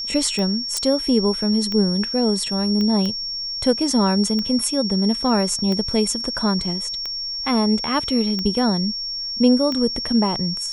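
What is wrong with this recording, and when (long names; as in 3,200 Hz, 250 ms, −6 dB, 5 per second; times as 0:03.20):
scratch tick 45 rpm −14 dBFS
whistle 5,500 Hz −25 dBFS
0:00.77: click −9 dBFS
0:02.81: click −14 dBFS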